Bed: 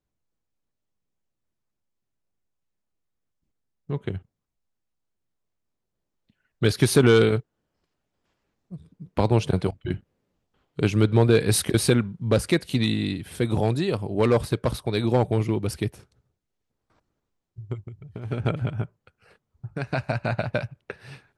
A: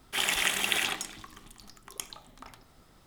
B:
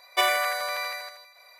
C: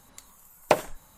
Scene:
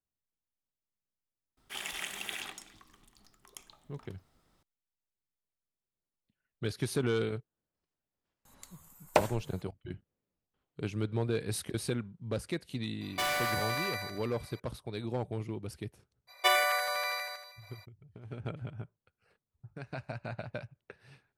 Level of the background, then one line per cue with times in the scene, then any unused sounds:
bed −14 dB
0:01.57: mix in A −11.5 dB
0:08.45: mix in C −4.5 dB
0:13.01: mix in B −3 dB + hard clipping −26 dBFS
0:16.27: mix in B −3 dB, fades 0.02 s

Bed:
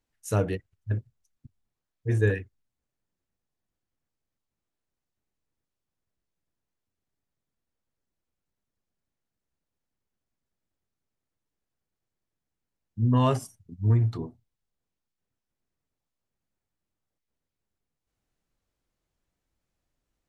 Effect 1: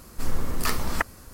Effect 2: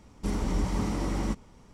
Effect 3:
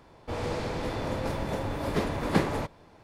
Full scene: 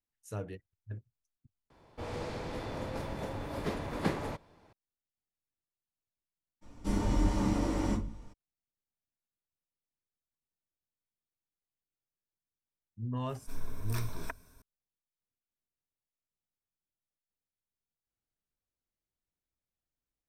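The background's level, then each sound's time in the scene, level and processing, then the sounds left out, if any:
bed −14 dB
0:01.70: overwrite with 3 −7 dB
0:06.61: mix in 2 −7.5 dB, fades 0.02 s + rectangular room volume 130 cubic metres, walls furnished, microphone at 2.4 metres
0:13.29: mix in 1 −16 dB + EQ curve with evenly spaced ripples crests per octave 1.6, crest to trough 11 dB

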